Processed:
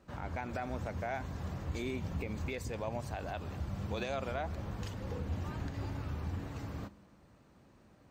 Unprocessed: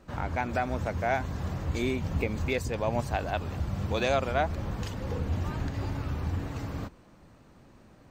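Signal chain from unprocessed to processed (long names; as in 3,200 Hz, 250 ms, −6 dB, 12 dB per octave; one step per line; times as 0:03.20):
high-pass filter 40 Hz
brickwall limiter −21 dBFS, peak gain reduction 7.5 dB
on a send: convolution reverb RT60 1.1 s, pre-delay 5 ms, DRR 17.5 dB
on the sum: level −6.5 dB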